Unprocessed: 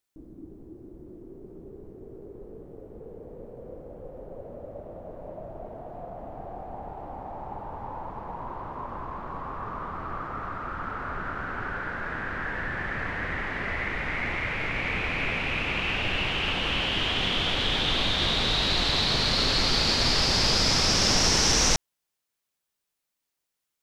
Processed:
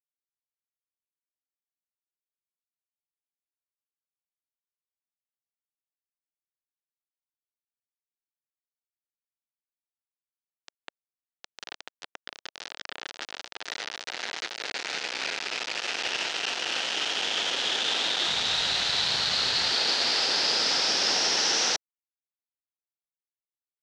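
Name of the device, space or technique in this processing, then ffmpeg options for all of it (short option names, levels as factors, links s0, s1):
hand-held game console: -filter_complex "[0:a]acrusher=bits=3:mix=0:aa=0.000001,highpass=480,equalizer=f=610:t=q:w=4:g=-3,equalizer=f=1100:t=q:w=4:g=-7,equalizer=f=2200:t=q:w=4:g=-4,lowpass=f=5700:w=0.5412,lowpass=f=5700:w=1.3066,asplit=3[s0][s1][s2];[s0]afade=t=out:st=18.27:d=0.02[s3];[s1]asubboost=boost=10.5:cutoff=97,afade=t=in:st=18.27:d=0.02,afade=t=out:st=19.71:d=0.02[s4];[s2]afade=t=in:st=19.71:d=0.02[s5];[s3][s4][s5]amix=inputs=3:normalize=0"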